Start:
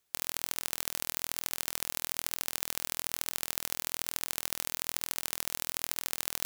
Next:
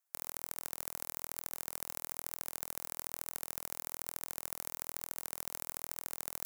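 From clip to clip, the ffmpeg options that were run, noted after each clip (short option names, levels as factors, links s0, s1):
-filter_complex "[0:a]equalizer=f=3400:t=o:w=1.5:g=-10.5,acrossover=split=570|2700[s0][s1][s2];[s0]acrusher=bits=4:dc=4:mix=0:aa=0.000001[s3];[s3][s1][s2]amix=inputs=3:normalize=0,volume=0.562"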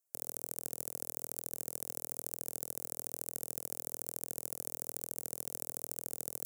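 -af "equalizer=f=125:t=o:w=1:g=4,equalizer=f=250:t=o:w=1:g=3,equalizer=f=500:t=o:w=1:g=7,equalizer=f=1000:t=o:w=1:g=-10,equalizer=f=2000:t=o:w=1:g=-8,equalizer=f=4000:t=o:w=1:g=-7,equalizer=f=8000:t=o:w=1:g=4"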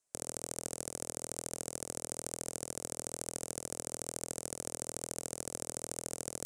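-af "lowpass=f=9300:w=0.5412,lowpass=f=9300:w=1.3066,volume=2"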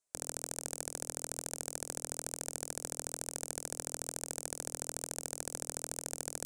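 -filter_complex "[0:a]bandreject=f=60:t=h:w=6,bandreject=f=120:t=h:w=6,bandreject=f=180:t=h:w=6,bandreject=f=240:t=h:w=6,bandreject=f=300:t=h:w=6,asplit=2[s0][s1];[s1]acrusher=bits=4:mix=0:aa=0.000001,volume=0.562[s2];[s0][s2]amix=inputs=2:normalize=0,volume=0.668"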